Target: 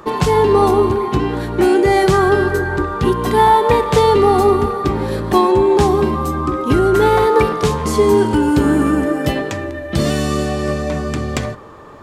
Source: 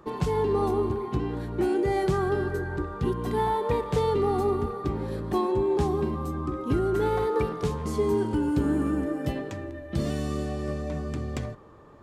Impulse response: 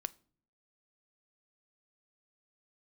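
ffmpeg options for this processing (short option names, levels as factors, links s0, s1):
-filter_complex "[0:a]asplit=2[s0][s1];[1:a]atrim=start_sample=2205,lowshelf=f=440:g=-11[s2];[s1][s2]afir=irnorm=-1:irlink=0,volume=4.73[s3];[s0][s3]amix=inputs=2:normalize=0,volume=1.41"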